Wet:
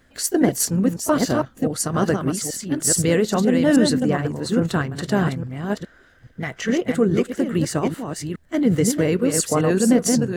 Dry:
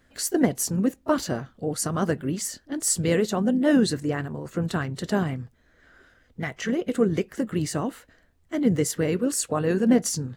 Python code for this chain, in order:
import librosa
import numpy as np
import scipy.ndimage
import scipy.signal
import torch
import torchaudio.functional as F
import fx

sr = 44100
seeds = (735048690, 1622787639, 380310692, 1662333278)

p1 = fx.reverse_delay(x, sr, ms=418, wet_db=-5)
p2 = fx.level_steps(p1, sr, step_db=13)
y = p1 + (p2 * librosa.db_to_amplitude(0.0))